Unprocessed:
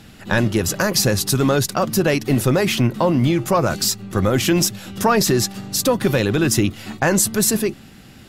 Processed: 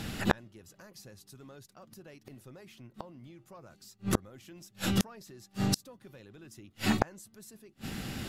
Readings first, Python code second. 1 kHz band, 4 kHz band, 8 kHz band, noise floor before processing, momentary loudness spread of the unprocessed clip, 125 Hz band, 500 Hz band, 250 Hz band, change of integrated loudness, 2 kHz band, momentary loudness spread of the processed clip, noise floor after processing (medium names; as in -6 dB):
-17.0 dB, -17.5 dB, -22.5 dB, -43 dBFS, 5 LU, -18.0 dB, -22.5 dB, -16.5 dB, -14.5 dB, -17.0 dB, 21 LU, -66 dBFS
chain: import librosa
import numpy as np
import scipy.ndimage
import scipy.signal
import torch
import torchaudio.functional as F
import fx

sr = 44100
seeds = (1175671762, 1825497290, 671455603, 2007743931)

y = fx.gate_flip(x, sr, shuts_db=-18.0, range_db=-39)
y = F.gain(torch.from_numpy(y), 5.0).numpy()